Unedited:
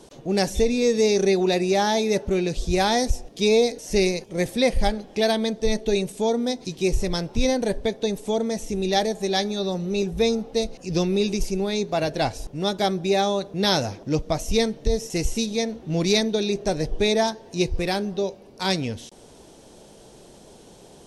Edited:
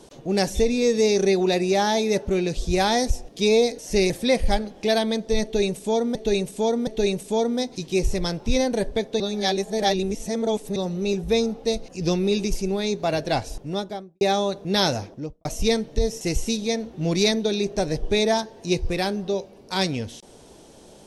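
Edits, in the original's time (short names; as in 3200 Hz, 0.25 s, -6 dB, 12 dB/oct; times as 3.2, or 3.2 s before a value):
4.1–4.43 cut
5.76–6.48 loop, 3 plays
8.09–9.65 reverse
12.45–13.1 studio fade out
13.85–14.34 studio fade out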